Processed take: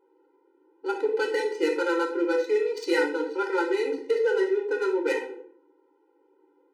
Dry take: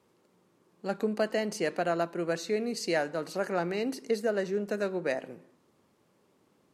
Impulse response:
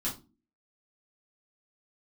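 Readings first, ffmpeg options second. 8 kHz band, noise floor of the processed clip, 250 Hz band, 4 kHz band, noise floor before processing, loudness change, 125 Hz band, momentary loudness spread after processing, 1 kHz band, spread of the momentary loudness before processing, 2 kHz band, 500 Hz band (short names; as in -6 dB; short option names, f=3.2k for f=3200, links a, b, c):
n/a, -66 dBFS, +3.5 dB, +2.0 dB, -69 dBFS, +5.0 dB, under -30 dB, 5 LU, +3.5 dB, 4 LU, +6.0 dB, +6.0 dB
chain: -filter_complex "[0:a]adynamicsmooth=sensitivity=6.5:basefreq=1.2k,asplit=2[a][b];[1:a]atrim=start_sample=2205,asetrate=24255,aresample=44100[c];[b][c]afir=irnorm=-1:irlink=0,volume=-6dB[d];[a][d]amix=inputs=2:normalize=0,afftfilt=real='re*eq(mod(floor(b*sr/1024/260),2),1)':imag='im*eq(mod(floor(b*sr/1024/260),2),1)':win_size=1024:overlap=0.75,volume=4dB"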